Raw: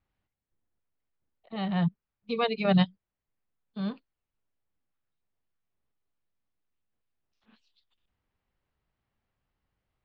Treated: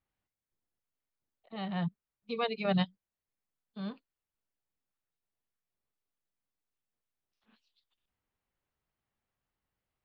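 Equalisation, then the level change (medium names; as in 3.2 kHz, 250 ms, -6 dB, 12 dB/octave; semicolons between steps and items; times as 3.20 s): bass shelf 170 Hz -5.5 dB; -4.5 dB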